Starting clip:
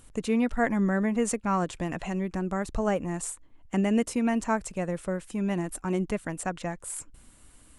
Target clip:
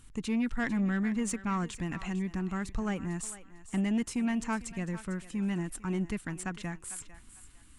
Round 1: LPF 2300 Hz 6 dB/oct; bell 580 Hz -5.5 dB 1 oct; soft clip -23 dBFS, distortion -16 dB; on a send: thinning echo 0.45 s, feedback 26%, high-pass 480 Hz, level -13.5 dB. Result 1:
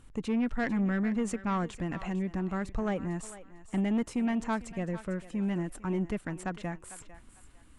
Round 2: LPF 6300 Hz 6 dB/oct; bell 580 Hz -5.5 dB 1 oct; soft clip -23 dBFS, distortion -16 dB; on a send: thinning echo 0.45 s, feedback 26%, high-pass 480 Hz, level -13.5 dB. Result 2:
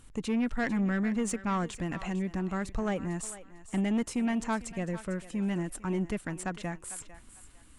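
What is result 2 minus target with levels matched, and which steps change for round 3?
500 Hz band +4.0 dB
change: bell 580 Hz -15 dB 1 oct

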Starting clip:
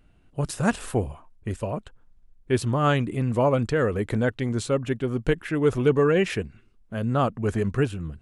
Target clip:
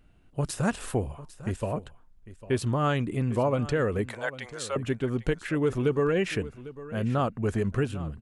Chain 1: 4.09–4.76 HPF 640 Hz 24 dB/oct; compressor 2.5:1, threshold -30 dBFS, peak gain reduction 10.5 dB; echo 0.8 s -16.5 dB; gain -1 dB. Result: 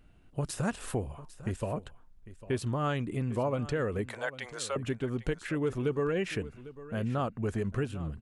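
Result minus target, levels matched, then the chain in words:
compressor: peak gain reduction +5 dB
4.09–4.76 HPF 640 Hz 24 dB/oct; compressor 2.5:1, threshold -21.5 dBFS, peak gain reduction 5.5 dB; echo 0.8 s -16.5 dB; gain -1 dB

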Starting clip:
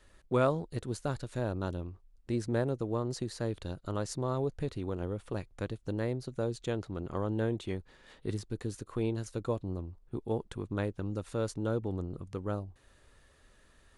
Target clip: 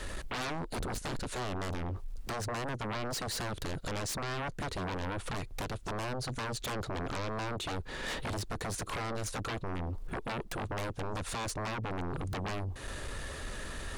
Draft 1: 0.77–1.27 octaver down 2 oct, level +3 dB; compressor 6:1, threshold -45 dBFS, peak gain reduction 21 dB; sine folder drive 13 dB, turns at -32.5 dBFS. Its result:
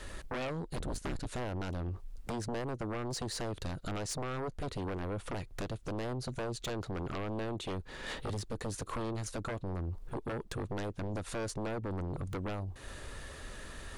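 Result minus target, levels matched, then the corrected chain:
sine folder: distortion -9 dB
0.77–1.27 octaver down 2 oct, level +3 dB; compressor 6:1, threshold -45 dBFS, peak gain reduction 21 dB; sine folder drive 19 dB, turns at -32.5 dBFS

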